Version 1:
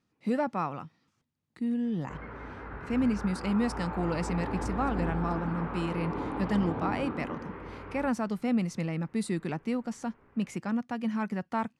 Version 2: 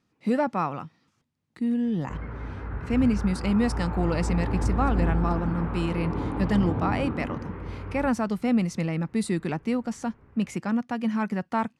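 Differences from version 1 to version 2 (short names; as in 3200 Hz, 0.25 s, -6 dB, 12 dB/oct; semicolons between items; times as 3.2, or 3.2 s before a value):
speech +4.5 dB; background: add bell 78 Hz +13 dB 2.6 oct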